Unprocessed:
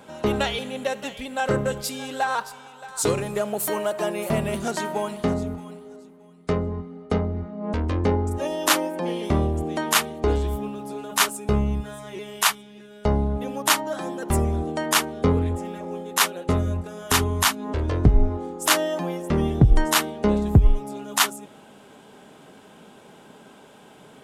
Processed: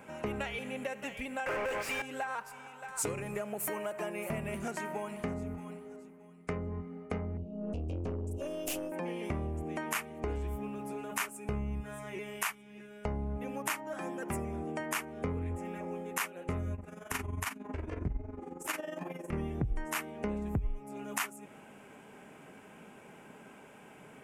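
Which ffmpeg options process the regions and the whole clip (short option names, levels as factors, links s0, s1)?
-filter_complex "[0:a]asettb=1/sr,asplit=3[s0][s1][s2];[s0]atrim=end=1.464[s3];[s1]atrim=start=1.46:end=2.02,asetpts=PTS-STARTPTS,afade=t=in:d=0.004:c=qsin,afade=t=out:st=0.556:d=0.004:c=qsin,highpass=450,asplit=2[s4][s5];[s5]highpass=f=720:p=1,volume=63.1,asoftclip=type=tanh:threshold=0.224[s6];[s4][s6]amix=inputs=2:normalize=0,lowpass=f=2100:p=1,volume=0.501[s7];[s2]atrim=start=2.016[s8];[s3][s7]acrossfade=d=0.004:c1=hsin:c2=qsin[s9];[s9][s8]acrossfade=d=0.004:c1=qsin:c2=hsin,asettb=1/sr,asplit=3[s10][s11][s12];[s10]atrim=end=7.374[s13];[s11]atrim=start=7.37:end=8.92,asetpts=PTS-STARTPTS,afade=t=in:d=0.004:c=qsin,afade=t=out:st=1.546:d=0.004:c=qsin,asuperstop=centerf=1400:order=20:qfactor=0.75,aeval=exprs='(tanh(10*val(0)+0.3)-tanh(0.3))/10':c=same[s14];[s12]atrim=start=8.916[s15];[s13][s14]acrossfade=d=0.004:c1=hsin:c2=qsin[s16];[s16][s15]acrossfade=d=0.004:c1=qsin:c2=hsin,asettb=1/sr,asplit=3[s17][s18][s19];[s17]atrim=end=13.944[s20];[s18]atrim=start=13.94:end=14.8,asetpts=PTS-STARTPTS,afade=t=in:d=0.004:c=qsin,afade=t=out:st=0.856:d=0.004:c=qsin,highpass=120,equalizer=f=4300:w=2.4:g=4,bandreject=f=4100:w=7.2[s21];[s19]atrim=start=14.796[s22];[s20][s21]acrossfade=d=0.004:c1=hsin:c2=qsin[s23];[s23][s22]acrossfade=d=0.004:c1=qsin:c2=hsin,asettb=1/sr,asplit=3[s24][s25][s26];[s24]atrim=end=16.754[s27];[s25]atrim=start=16.75:end=19.33,asetpts=PTS-STARTPTS,afade=t=in:d=0.004:c=qsin,afade=t=out:st=2.576:d=0.004:c=qsin,flanger=delay=18.5:depth=4.7:speed=2.5,tremolo=f=22:d=0.71[s28];[s26]atrim=start=19.326[s29];[s27][s28]acrossfade=d=0.004:c1=hsin:c2=qsin[s30];[s30][s29]acrossfade=d=0.004:c1=qsin:c2=hsin,highshelf=f=3000:t=q:w=3:g=-8,acompressor=threshold=0.0316:ratio=3,bass=f=250:g=2,treble=f=4000:g=9,volume=0.501"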